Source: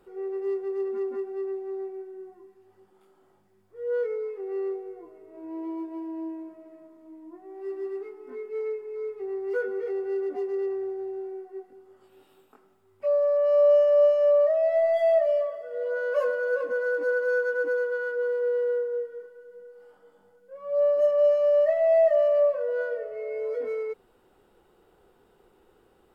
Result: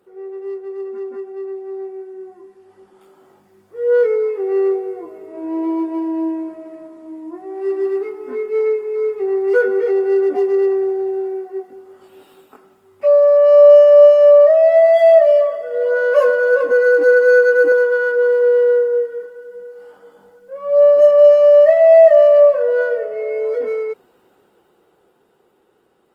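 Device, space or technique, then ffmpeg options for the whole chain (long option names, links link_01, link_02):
video call: -filter_complex "[0:a]asettb=1/sr,asplit=3[link_01][link_02][link_03];[link_01]atrim=end=16.714[link_04];[link_02]atrim=start=16.71:end=17.72,asetpts=PTS-STARTPTS,afade=type=in:duration=0.004:curve=qsin,afade=type=out:start_time=1.006:duration=0.004:curve=qsin,aecho=1:1:2.5:0.69,atrim=end_sample=44541[link_05];[link_03]atrim=start=17.716[link_06];[link_04][link_05]acrossfade=duration=0.004:curve1=hsin:curve2=qsin[link_07];[link_07][link_06]acrossfade=duration=0.004:curve1=qsin:curve2=hsin,highpass=130,dynaudnorm=framelen=160:gausssize=31:maxgain=12.5dB,volume=1.5dB" -ar 48000 -c:a libopus -b:a 24k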